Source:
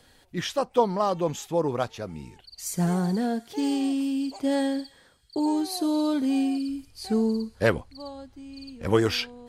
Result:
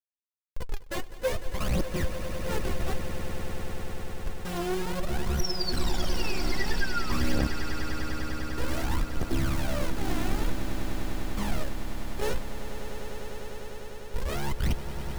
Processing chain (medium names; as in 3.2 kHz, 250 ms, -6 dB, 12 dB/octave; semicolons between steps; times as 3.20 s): high-pass 55 Hz 24 dB/octave; treble shelf 4.6 kHz -4.5 dB; in parallel at +1.5 dB: compression 16:1, threshold -36 dBFS, peak gain reduction 21.5 dB; on the sum: granular stretch 1.6×, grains 29 ms; Schmitt trigger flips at -21.5 dBFS; painted sound fall, 5.34–7.24 s, 1.1–6.1 kHz -37 dBFS; hard clipper -32.5 dBFS, distortion -9 dB; phaser 0.54 Hz, delay 3 ms, feedback 73%; on a send: echo with a slow build-up 100 ms, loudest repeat 8, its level -13 dB